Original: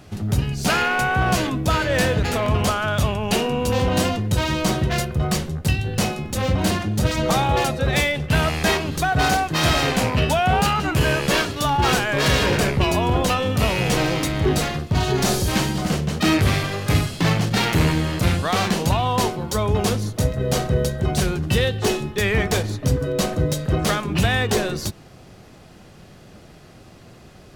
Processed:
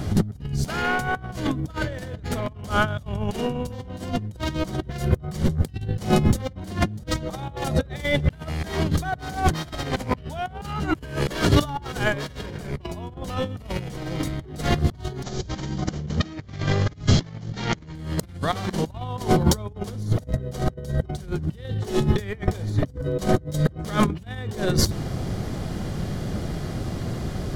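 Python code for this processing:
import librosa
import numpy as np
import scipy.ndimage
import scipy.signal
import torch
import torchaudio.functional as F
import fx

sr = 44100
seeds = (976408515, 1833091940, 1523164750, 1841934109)

y = fx.resample_bad(x, sr, factor=3, down='none', up='filtered', at=(15.23, 17.95))
y = fx.low_shelf(y, sr, hz=300.0, db=9.5)
y = fx.notch(y, sr, hz=2600.0, q=7.8)
y = fx.over_compress(y, sr, threshold_db=-24.0, ratio=-0.5)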